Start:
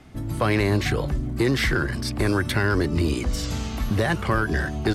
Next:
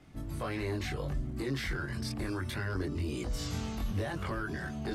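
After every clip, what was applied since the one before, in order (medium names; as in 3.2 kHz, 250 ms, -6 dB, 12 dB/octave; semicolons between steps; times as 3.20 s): peak limiter -19 dBFS, peak gain reduction 6 dB; chorus voices 2, 0.71 Hz, delay 22 ms, depth 1 ms; trim -5.5 dB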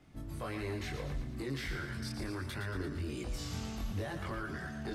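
thinning echo 115 ms, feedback 58%, high-pass 640 Hz, level -7 dB; trim -4 dB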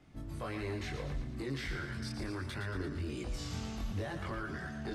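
Bessel low-pass 8.9 kHz, order 2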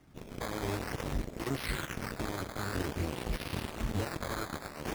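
decimation with a swept rate 11×, swing 100% 0.51 Hz; Chebyshev shaper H 3 -21 dB, 7 -14 dB, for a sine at -27 dBFS; trim +4.5 dB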